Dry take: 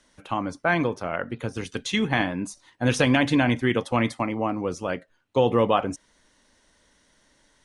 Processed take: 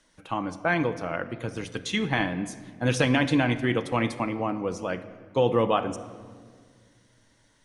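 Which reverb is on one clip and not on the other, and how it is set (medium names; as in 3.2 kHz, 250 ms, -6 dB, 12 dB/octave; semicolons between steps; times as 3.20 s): simulated room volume 2700 m³, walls mixed, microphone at 0.62 m; trim -2.5 dB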